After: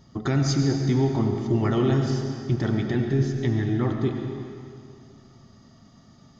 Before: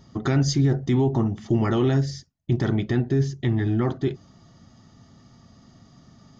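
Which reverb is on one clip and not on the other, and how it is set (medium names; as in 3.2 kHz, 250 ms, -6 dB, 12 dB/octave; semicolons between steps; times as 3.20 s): algorithmic reverb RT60 2.4 s, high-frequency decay 0.9×, pre-delay 55 ms, DRR 3.5 dB; trim -2 dB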